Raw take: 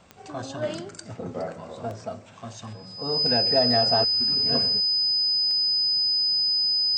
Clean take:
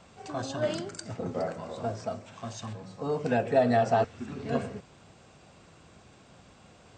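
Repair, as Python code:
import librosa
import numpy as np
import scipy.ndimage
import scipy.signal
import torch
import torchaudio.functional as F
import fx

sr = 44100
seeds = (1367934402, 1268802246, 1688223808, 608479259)

y = fx.fix_declick_ar(x, sr, threshold=10.0)
y = fx.notch(y, sr, hz=5000.0, q=30.0)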